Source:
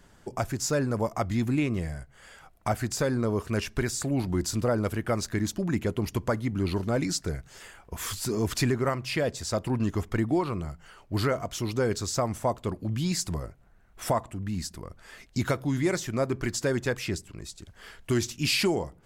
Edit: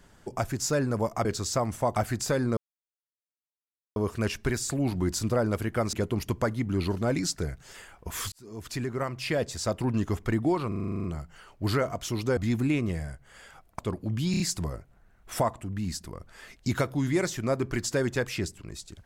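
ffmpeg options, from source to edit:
ffmpeg -i in.wav -filter_complex "[0:a]asplit=20[link_01][link_02][link_03][link_04][link_05][link_06][link_07][link_08][link_09][link_10][link_11][link_12][link_13][link_14][link_15][link_16][link_17][link_18][link_19][link_20];[link_01]atrim=end=1.252[link_21];[link_02]atrim=start=11.868:end=12.582[link_22];[link_03]atrim=start=2.668:end=3.28,asetpts=PTS-STARTPTS,afade=type=out:start_time=0.608:duration=0.004:curve=hsin,apad=pad_dur=1.39[link_23];[link_04]atrim=start=3.28:end=5.252,asetpts=PTS-STARTPTS,afade=type=in:duration=0.004:curve=hsin[link_24];[link_05]atrim=start=5.788:end=8.18,asetpts=PTS-STARTPTS,afade=type=out:start_time=2.388:duration=0.004:curve=hsin[link_25];[link_06]atrim=start=8.18:end=10.582,asetpts=PTS-STARTPTS,afade=type=in:duration=1.09[link_26];[link_07]atrim=start=10.538:end=10.582[link_27];[link_08]atrim=start=10.538:end=10.582[link_28];[link_09]atrim=start=10.538:end=10.582[link_29];[link_10]atrim=start=10.538:end=10.582[link_30];[link_11]atrim=start=10.538:end=10.582[link_31];[link_12]atrim=start=10.538:end=10.582[link_32];[link_13]atrim=start=10.538:end=10.582[link_33];[link_14]atrim=start=10.538:end=10.582[link_34];[link_15]atrim=start=10.538:end=11.872[link_35];[link_16]atrim=start=1.248:end=2.672[link_36];[link_17]atrim=start=12.578:end=13.132[link_37];[link_18]atrim=start=13.098:end=13.132[link_38];[link_19]atrim=start=13.098:end=13.132[link_39];[link_20]atrim=start=13.098[link_40];[link_21][link_22]acrossfade=duration=0.004:curve1=hsin:curve2=hsin[link_41];[link_23][link_24]concat=n=2:v=0:a=1[link_42];[link_41][link_42]acrossfade=duration=0.004:curve1=hsin:curve2=hsin[link_43];[link_25][link_26]concat=n=2:v=0:a=1[link_44];[link_43][link_44]acrossfade=duration=0.004:curve1=hsin:curve2=hsin[link_45];[link_45][link_27]acrossfade=duration=0.004:curve1=hsin:curve2=hsin[link_46];[link_46][link_28]acrossfade=duration=0.004:curve1=hsin:curve2=hsin[link_47];[link_47][link_29]acrossfade=duration=0.004:curve1=hsin:curve2=hsin[link_48];[link_48][link_30]acrossfade=duration=0.004:curve1=hsin:curve2=hsin[link_49];[link_49][link_31]acrossfade=duration=0.004:curve1=hsin:curve2=hsin[link_50];[link_50][link_32]acrossfade=duration=0.004:curve1=hsin:curve2=hsin[link_51];[link_51][link_33]acrossfade=duration=0.004:curve1=hsin:curve2=hsin[link_52];[link_52][link_34]acrossfade=duration=0.004:curve1=hsin:curve2=hsin[link_53];[link_53][link_35]acrossfade=duration=0.004:curve1=hsin:curve2=hsin[link_54];[link_54][link_36]acrossfade=duration=0.004:curve1=hsin:curve2=hsin[link_55];[link_55][link_37]acrossfade=duration=0.004:curve1=hsin:curve2=hsin[link_56];[link_56][link_38]acrossfade=duration=0.004:curve1=hsin:curve2=hsin[link_57];[link_57][link_39]acrossfade=duration=0.004:curve1=hsin:curve2=hsin[link_58];[link_58][link_40]acrossfade=duration=0.004:curve1=hsin:curve2=hsin" out.wav

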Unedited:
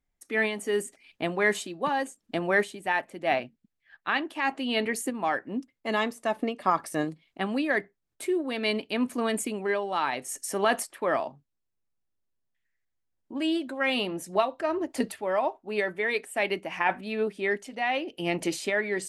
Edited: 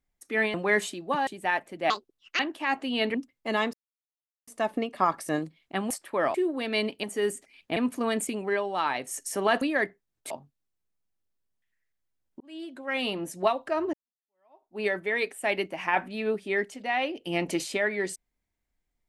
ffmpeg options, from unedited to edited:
ffmpeg -i in.wav -filter_complex "[0:a]asplit=15[link_01][link_02][link_03][link_04][link_05][link_06][link_07][link_08][link_09][link_10][link_11][link_12][link_13][link_14][link_15];[link_01]atrim=end=0.542[link_16];[link_02]atrim=start=1.268:end=2.002[link_17];[link_03]atrim=start=2.688:end=3.324[link_18];[link_04]atrim=start=3.32:end=4.15,asetpts=PTS-STARTPTS,asetrate=74088,aresample=44100[link_19];[link_05]atrim=start=4.146:end=4.902[link_20];[link_06]atrim=start=5.538:end=6.13,asetpts=PTS-STARTPTS,afade=type=out:start_time=0.588:duration=0.004:curve=hsin,apad=pad_dur=0.74[link_21];[link_07]atrim=start=6.13:end=7.562,asetpts=PTS-STARTPTS,afade=type=in:duration=0.004:curve=hsin[link_22];[link_08]atrim=start=10.788:end=11.232[link_23];[link_09]atrim=start=8.248:end=8.942[link_24];[link_10]atrim=start=0.538:end=1.272[link_25];[link_11]atrim=start=8.938:end=10.792[link_26];[link_12]atrim=start=7.558:end=8.252[link_27];[link_13]atrim=start=11.228:end=13.33,asetpts=PTS-STARTPTS,afade=type=out:start_time=2.098:duration=0.004:curve=hsin[link_28];[link_14]atrim=start=13.33:end=14.86,asetpts=PTS-STARTPTS,afade=type=in:duration=0.81,afade=type=out:start_time=1.526:duration=0.004:curve=hsin[link_29];[link_15]atrim=start=14.86,asetpts=PTS-STARTPTS,afade=type=in:duration=0.86:curve=exp[link_30];[link_16][link_17]acrossfade=duration=0.004:curve1=hsin:curve2=hsin[link_31];[link_31][link_18]acrossfade=duration=0.004:curve1=hsin:curve2=hsin[link_32];[link_32][link_19]acrossfade=duration=0.004:curve1=hsin:curve2=hsin[link_33];[link_33][link_20]acrossfade=duration=0.004:curve1=hsin:curve2=hsin[link_34];[link_21][link_22]concat=n=2:v=0:a=1[link_35];[link_34][link_35]acrossfade=duration=0.004:curve1=hsin:curve2=hsin[link_36];[link_36][link_23]acrossfade=duration=0.004:curve1=hsin:curve2=hsin[link_37];[link_37][link_24]acrossfade=duration=0.004:curve1=hsin:curve2=hsin[link_38];[link_38][link_25]acrossfade=duration=0.004:curve1=hsin:curve2=hsin[link_39];[link_39][link_26]acrossfade=duration=0.004:curve1=hsin:curve2=hsin[link_40];[link_40][link_27]acrossfade=duration=0.004:curve1=hsin:curve2=hsin[link_41];[link_28][link_29][link_30]concat=n=3:v=0:a=1[link_42];[link_41][link_42]acrossfade=duration=0.004:curve1=hsin:curve2=hsin" out.wav

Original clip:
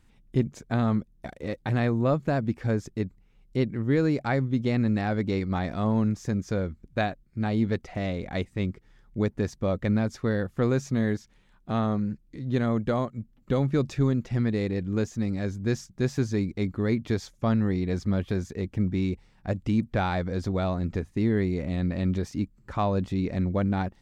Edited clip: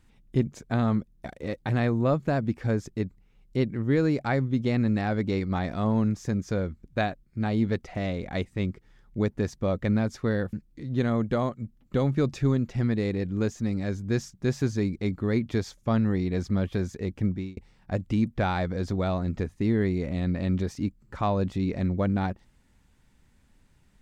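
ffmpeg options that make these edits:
ffmpeg -i in.wav -filter_complex "[0:a]asplit=3[link_01][link_02][link_03];[link_01]atrim=end=10.532[link_04];[link_02]atrim=start=12.088:end=19.13,asetpts=PTS-STARTPTS,afade=type=out:start_time=6.732:duration=0.31[link_05];[link_03]atrim=start=19.13,asetpts=PTS-STARTPTS,afade=type=in:duration=0.004:curve=hsin[link_06];[link_05][link_06]concat=n=2:v=0:a=1[link_07];[link_04][link_07]acrossfade=duration=0.004:curve1=hsin:curve2=hsin" out.wav

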